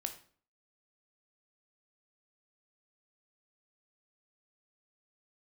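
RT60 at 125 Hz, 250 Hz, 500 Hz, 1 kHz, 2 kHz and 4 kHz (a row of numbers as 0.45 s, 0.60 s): 0.55 s, 0.55 s, 0.50 s, 0.45 s, 0.40 s, 0.40 s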